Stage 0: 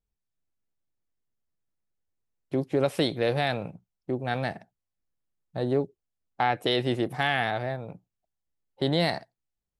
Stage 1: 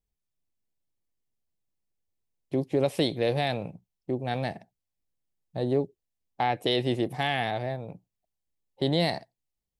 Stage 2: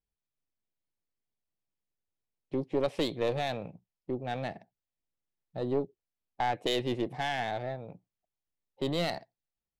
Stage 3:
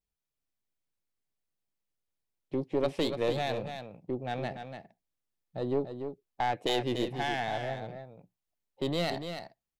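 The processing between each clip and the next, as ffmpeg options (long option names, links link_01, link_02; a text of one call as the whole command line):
ffmpeg -i in.wav -af "equalizer=frequency=1400:width_type=o:width=0.6:gain=-9.5" out.wav
ffmpeg -i in.wav -af "lowshelf=frequency=160:gain=-5,adynamicsmooth=sensitivity=5:basefreq=4900,aeval=exprs='0.224*(cos(1*acos(clip(val(0)/0.224,-1,1)))-cos(1*PI/2))+0.0708*(cos(2*acos(clip(val(0)/0.224,-1,1)))-cos(2*PI/2))':channel_layout=same,volume=-3dB" out.wav
ffmpeg -i in.wav -af "aecho=1:1:290:0.398" out.wav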